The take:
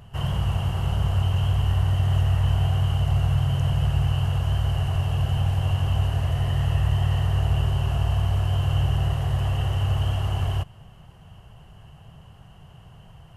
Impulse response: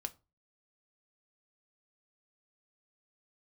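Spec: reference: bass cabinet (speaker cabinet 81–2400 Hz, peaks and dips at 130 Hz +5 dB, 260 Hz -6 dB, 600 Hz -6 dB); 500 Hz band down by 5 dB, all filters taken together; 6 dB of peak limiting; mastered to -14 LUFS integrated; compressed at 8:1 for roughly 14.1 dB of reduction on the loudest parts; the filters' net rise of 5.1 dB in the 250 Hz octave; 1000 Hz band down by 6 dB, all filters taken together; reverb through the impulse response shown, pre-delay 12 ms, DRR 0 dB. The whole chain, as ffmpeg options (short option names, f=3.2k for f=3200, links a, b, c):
-filter_complex "[0:a]equalizer=f=250:t=o:g=8,equalizer=f=500:t=o:g=-3.5,equalizer=f=1k:t=o:g=-6,acompressor=threshold=-32dB:ratio=8,alimiter=level_in=6dB:limit=-24dB:level=0:latency=1,volume=-6dB,asplit=2[a][b];[1:a]atrim=start_sample=2205,adelay=12[c];[b][c]afir=irnorm=-1:irlink=0,volume=1.5dB[d];[a][d]amix=inputs=2:normalize=0,highpass=f=81:w=0.5412,highpass=f=81:w=1.3066,equalizer=f=130:t=q:w=4:g=5,equalizer=f=260:t=q:w=4:g=-6,equalizer=f=600:t=q:w=4:g=-6,lowpass=f=2.4k:w=0.5412,lowpass=f=2.4k:w=1.3066,volume=23dB"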